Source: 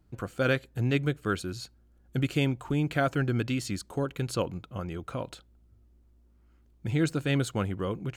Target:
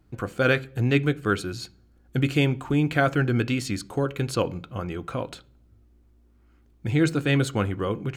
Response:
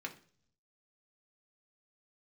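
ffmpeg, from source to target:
-filter_complex "[0:a]asplit=2[a][b];[1:a]atrim=start_sample=2205,lowpass=7.5k[c];[b][c]afir=irnorm=-1:irlink=0,volume=-6.5dB[d];[a][d]amix=inputs=2:normalize=0,volume=3dB"

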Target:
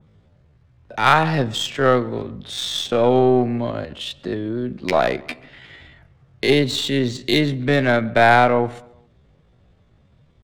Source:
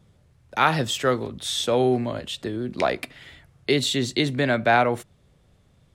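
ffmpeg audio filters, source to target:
-filter_complex "[0:a]adynamicsmooth=sensitivity=2.5:basefreq=4.6k,aeval=exprs='0.531*(cos(1*acos(clip(val(0)/0.531,-1,1)))-cos(1*PI/2))+0.0376*(cos(4*acos(clip(val(0)/0.531,-1,1)))-cos(4*PI/2))+0.00596*(cos(7*acos(clip(val(0)/0.531,-1,1)))-cos(7*PI/2))':c=same,atempo=0.57,asplit=2[a][b];[b]adelay=135,lowpass=f=3.1k:p=1,volume=-23dB,asplit=2[c][d];[d]adelay=135,lowpass=f=3.1k:p=1,volume=0.48,asplit=2[e][f];[f]adelay=135,lowpass=f=3.1k:p=1,volume=0.48[g];[c][e][g]amix=inputs=3:normalize=0[h];[a][h]amix=inputs=2:normalize=0,adynamicequalizer=threshold=0.0158:dfrequency=2700:dqfactor=0.7:tfrequency=2700:tqfactor=0.7:attack=5:release=100:ratio=0.375:range=2:mode=cutabove:tftype=highshelf,volume=4.5dB"

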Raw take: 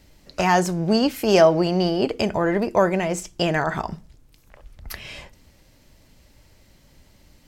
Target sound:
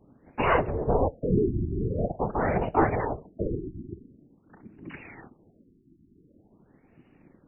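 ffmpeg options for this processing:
-af "aeval=exprs='val(0)*sin(2*PI*240*n/s)':c=same,afftfilt=real='hypot(re,im)*cos(2*PI*random(0))':imag='hypot(re,im)*sin(2*PI*random(1))':win_size=512:overlap=0.75,afftfilt=real='re*lt(b*sr/1024,370*pow(3000/370,0.5+0.5*sin(2*PI*0.46*pts/sr)))':imag='im*lt(b*sr/1024,370*pow(3000/370,0.5+0.5*sin(2*PI*0.46*pts/sr)))':win_size=1024:overlap=0.75,volume=4.5dB"

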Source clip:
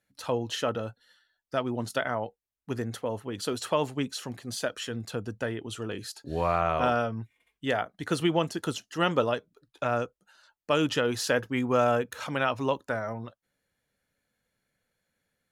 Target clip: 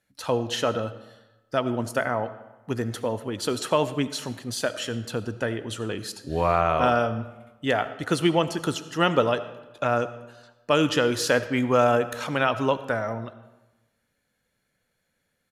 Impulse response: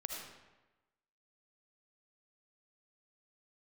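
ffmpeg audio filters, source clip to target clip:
-filter_complex "[0:a]asettb=1/sr,asplit=3[a][b][c];[a]atrim=end=1.814[d];[b]atrim=start=1.81:end=2.25,asetpts=PTS-STARTPTS,afade=t=in:d=0.004:c=qsin,afade=t=out:st=0.436:d=0.004:c=qsin,equalizer=f=3.6k:w=2.4:g=-11.5[e];[c]atrim=start=2.246[f];[d][e]acrossfade=d=0.004:c1=hsin:c2=qsin[g];[g][f]acrossfade=d=0.004:c1=qsin:c2=hsin,asplit=2[h][i];[1:a]atrim=start_sample=2205[j];[i][j]afir=irnorm=-1:irlink=0,volume=-8dB[k];[h][k]amix=inputs=2:normalize=0,aresample=32000,aresample=44100,volume=2dB"

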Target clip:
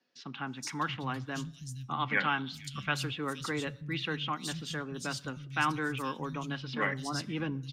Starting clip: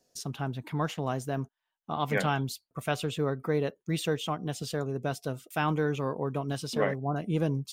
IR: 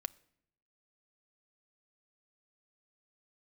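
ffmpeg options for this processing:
-filter_complex "[0:a]highshelf=f=11k:g=-11.5,bandreject=f=650:w=12,acrossover=split=390|960|7600[a][b][c][d];[b]acrusher=bits=2:mix=0:aa=0.5[e];[c]acontrast=77[f];[a][e][f][d]amix=inputs=4:normalize=0,acrossover=split=160|3900[g][h][i];[i]adelay=470[j];[g]adelay=630[k];[k][h][j]amix=inputs=3:normalize=0[l];[1:a]atrim=start_sample=2205,asetrate=43218,aresample=44100[m];[l][m]afir=irnorm=-1:irlink=0"

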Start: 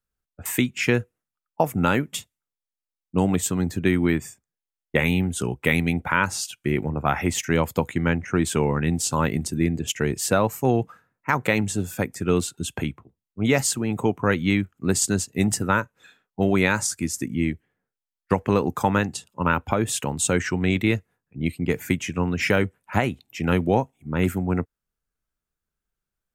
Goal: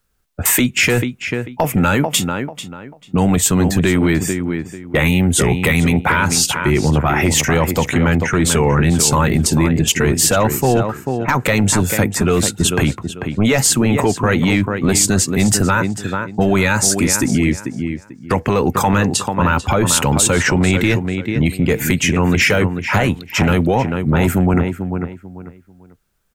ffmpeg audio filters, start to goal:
-filter_complex "[0:a]acompressor=threshold=-26dB:ratio=2.5,asplit=2[a][b];[b]adelay=442,lowpass=f=3.5k:p=1,volume=-11dB,asplit=2[c][d];[d]adelay=442,lowpass=f=3.5k:p=1,volume=0.26,asplit=2[e][f];[f]adelay=442,lowpass=f=3.5k:p=1,volume=0.26[g];[a][c][e][g]amix=inputs=4:normalize=0,apsyclip=25.5dB,volume=-8dB"

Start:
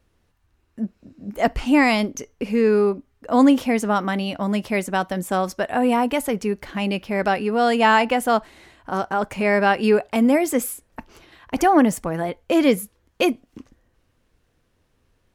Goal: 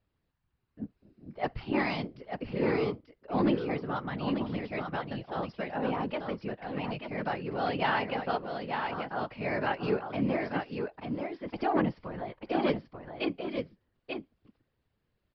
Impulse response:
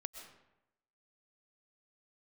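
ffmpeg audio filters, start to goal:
-filter_complex "[0:a]aeval=exprs='0.631*(cos(1*acos(clip(val(0)/0.631,-1,1)))-cos(1*PI/2))+0.0631*(cos(3*acos(clip(val(0)/0.631,-1,1)))-cos(3*PI/2))':c=same,aresample=11025,aresample=44100,asplit=2[a][b];[b]aecho=0:1:888:0.531[c];[a][c]amix=inputs=2:normalize=0,afftfilt=real='hypot(re,im)*cos(2*PI*random(0))':imag='hypot(re,im)*sin(2*PI*random(1))':win_size=512:overlap=0.75,volume=-4.5dB"

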